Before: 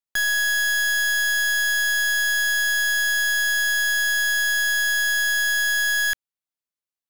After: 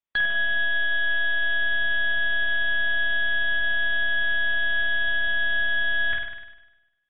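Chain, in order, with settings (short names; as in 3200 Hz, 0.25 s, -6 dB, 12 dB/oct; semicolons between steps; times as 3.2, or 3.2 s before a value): 0.57–1.44 notches 60/120/180/240 Hz; on a send: flutter echo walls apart 8.6 m, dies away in 1 s; on the sum: AAC 16 kbps 32000 Hz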